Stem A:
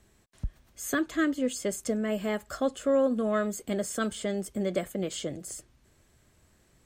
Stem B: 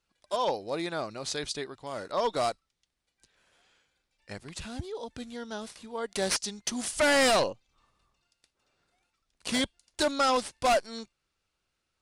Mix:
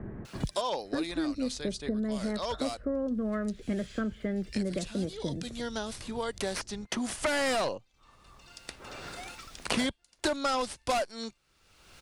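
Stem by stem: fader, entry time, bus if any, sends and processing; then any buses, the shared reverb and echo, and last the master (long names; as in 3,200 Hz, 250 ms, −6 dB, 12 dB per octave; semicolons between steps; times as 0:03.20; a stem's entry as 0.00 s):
−12.0 dB, 0.00 s, no send, Chebyshev low-pass filter 1,800 Hz, order 3; spectral tilt −4.5 dB per octave
+2.0 dB, 0.25 s, no send, automatic ducking −13 dB, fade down 1.40 s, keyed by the first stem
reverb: not used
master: multiband upward and downward compressor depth 100%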